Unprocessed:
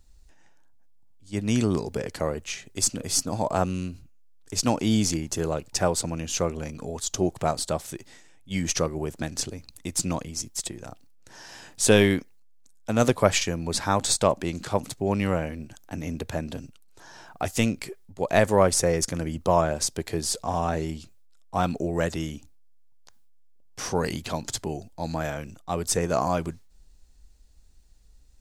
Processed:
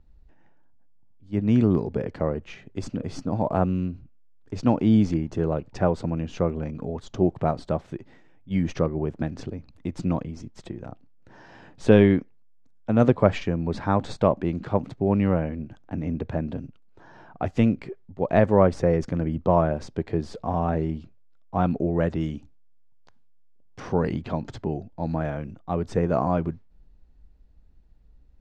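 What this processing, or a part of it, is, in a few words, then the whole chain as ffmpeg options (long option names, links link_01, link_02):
phone in a pocket: -filter_complex "[0:a]asettb=1/sr,asplit=3[link_01][link_02][link_03];[link_01]atrim=end=22.214[link_04];[link_02]atrim=start=22.21:end=23.8,asetpts=PTS-STARTPTS,afade=type=in:duration=0.004:curve=qsin,afade=type=out:start_time=1.586:duration=0.004:curve=qsin,highshelf=frequency=3700:gain=10.5[link_05];[link_03]atrim=start=23.796[link_06];[link_04][link_05]acrossfade=duration=0.004:curve1=hsin:curve2=qsin[link_07];[link_07][link_06]acrossfade=duration=0.004:curve1=qsin:curve2=hsin,lowpass=3300,equalizer=frequency=180:width_type=o:width=2.5:gain=5,highshelf=frequency=2500:gain=-12"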